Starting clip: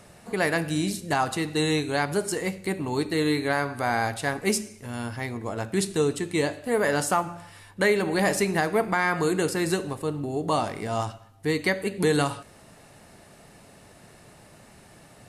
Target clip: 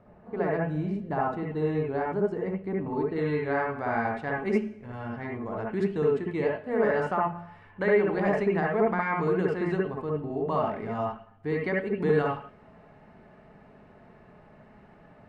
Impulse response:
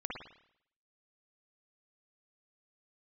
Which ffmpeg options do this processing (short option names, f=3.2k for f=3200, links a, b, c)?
-filter_complex "[0:a]asetnsamples=n=441:p=0,asendcmd='3.16 lowpass f 1800',lowpass=1.1k[a];[1:a]atrim=start_sample=2205,atrim=end_sample=4410,asetrate=37485,aresample=44100[b];[a][b]afir=irnorm=-1:irlink=0,volume=-3dB"